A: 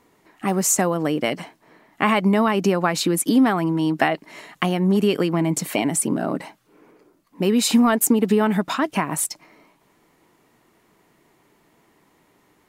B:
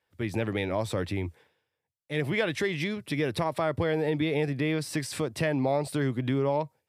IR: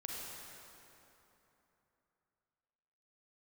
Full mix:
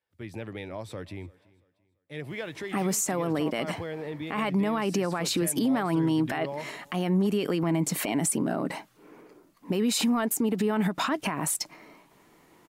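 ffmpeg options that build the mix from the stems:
-filter_complex "[0:a]acompressor=threshold=0.112:ratio=6,adelay=2300,volume=1.19[s0];[1:a]volume=0.376,asplit=2[s1][s2];[s2]volume=0.0668,aecho=0:1:339|678|1017|1356|1695:1|0.33|0.109|0.0359|0.0119[s3];[s0][s1][s3]amix=inputs=3:normalize=0,alimiter=limit=0.126:level=0:latency=1:release=60"

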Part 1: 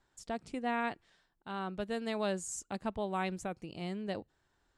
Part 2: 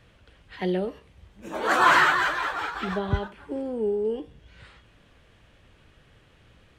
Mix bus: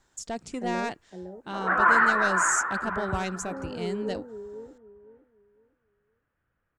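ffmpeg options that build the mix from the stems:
-filter_complex "[0:a]acontrast=84,asoftclip=type=tanh:threshold=0.0841,volume=0.841[s0];[1:a]afwtdn=0.0398,lowpass=f=1500:t=q:w=2.7,volume=0.398,asplit=2[s1][s2];[s2]volume=0.447,aecho=0:1:509|1018|1527|2036:1|0.26|0.0676|0.0176[s3];[s0][s1][s3]amix=inputs=3:normalize=0,equalizer=f=6800:w=1.7:g=9.5"

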